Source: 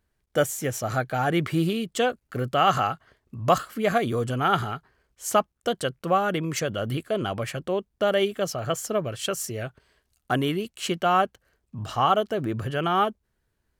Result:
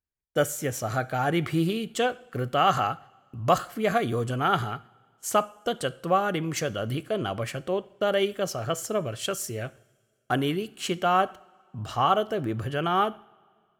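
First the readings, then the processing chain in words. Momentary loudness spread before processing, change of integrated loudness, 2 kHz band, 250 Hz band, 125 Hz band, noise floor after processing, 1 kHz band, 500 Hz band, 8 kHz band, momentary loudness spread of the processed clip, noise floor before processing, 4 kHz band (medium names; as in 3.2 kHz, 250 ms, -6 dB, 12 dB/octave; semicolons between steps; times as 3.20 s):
9 LU, -1.5 dB, -1.5 dB, -1.5 dB, -1.5 dB, -69 dBFS, -1.0 dB, -1.5 dB, -1.5 dB, 9 LU, -75 dBFS, -1.5 dB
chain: gate -43 dBFS, range -19 dB; two-slope reverb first 0.51 s, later 2.2 s, from -19 dB, DRR 15 dB; trim -1.5 dB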